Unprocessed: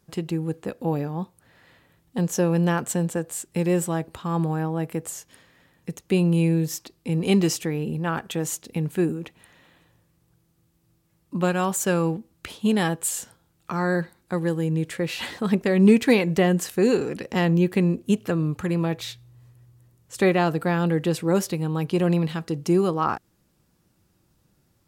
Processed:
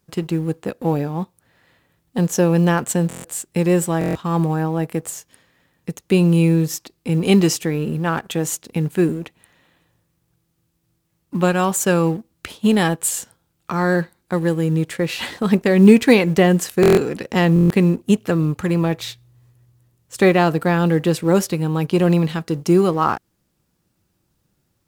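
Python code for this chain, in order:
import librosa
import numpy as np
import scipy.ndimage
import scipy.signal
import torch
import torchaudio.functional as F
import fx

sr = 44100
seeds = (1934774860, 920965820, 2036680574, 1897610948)

y = fx.law_mismatch(x, sr, coded='A')
y = fx.buffer_glitch(y, sr, at_s=(3.08, 3.99, 16.81, 17.54), block=1024, repeats=6)
y = y * librosa.db_to_amplitude(6.0)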